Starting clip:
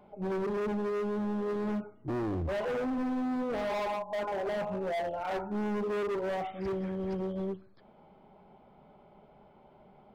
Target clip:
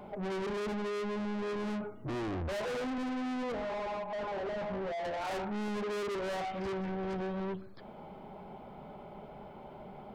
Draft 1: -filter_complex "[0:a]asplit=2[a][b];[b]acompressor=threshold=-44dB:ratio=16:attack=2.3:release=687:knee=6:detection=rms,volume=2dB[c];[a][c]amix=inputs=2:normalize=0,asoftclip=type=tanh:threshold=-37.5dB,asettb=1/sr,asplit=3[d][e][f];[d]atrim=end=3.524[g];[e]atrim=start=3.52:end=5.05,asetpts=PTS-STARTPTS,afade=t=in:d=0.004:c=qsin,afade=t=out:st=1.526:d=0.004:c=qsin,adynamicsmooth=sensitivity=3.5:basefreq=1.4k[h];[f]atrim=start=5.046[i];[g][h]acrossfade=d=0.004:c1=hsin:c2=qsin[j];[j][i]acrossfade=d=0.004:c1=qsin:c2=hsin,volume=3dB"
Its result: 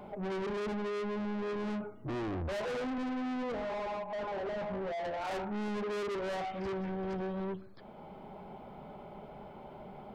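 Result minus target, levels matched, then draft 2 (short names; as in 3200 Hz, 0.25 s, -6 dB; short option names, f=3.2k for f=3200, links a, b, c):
compressor: peak gain reduction +8.5 dB
-filter_complex "[0:a]asplit=2[a][b];[b]acompressor=threshold=-34.5dB:ratio=16:attack=2.3:release=687:knee=6:detection=rms,volume=2dB[c];[a][c]amix=inputs=2:normalize=0,asoftclip=type=tanh:threshold=-37.5dB,asettb=1/sr,asplit=3[d][e][f];[d]atrim=end=3.524[g];[e]atrim=start=3.52:end=5.05,asetpts=PTS-STARTPTS,afade=t=in:d=0.004:c=qsin,afade=t=out:st=1.526:d=0.004:c=qsin,adynamicsmooth=sensitivity=3.5:basefreq=1.4k[h];[f]atrim=start=5.046[i];[g][h]acrossfade=d=0.004:c1=hsin:c2=qsin[j];[j][i]acrossfade=d=0.004:c1=qsin:c2=hsin,volume=3dB"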